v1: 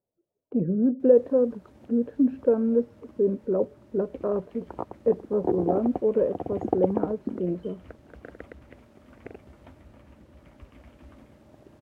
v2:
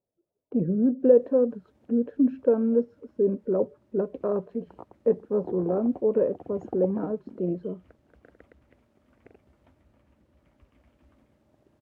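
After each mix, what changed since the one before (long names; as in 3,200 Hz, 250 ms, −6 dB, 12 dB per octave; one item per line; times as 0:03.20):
background −11.5 dB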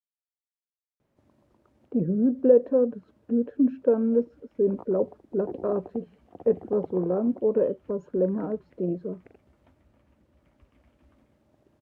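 speech: entry +1.40 s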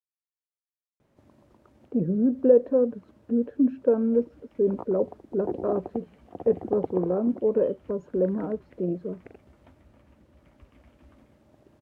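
background +6.0 dB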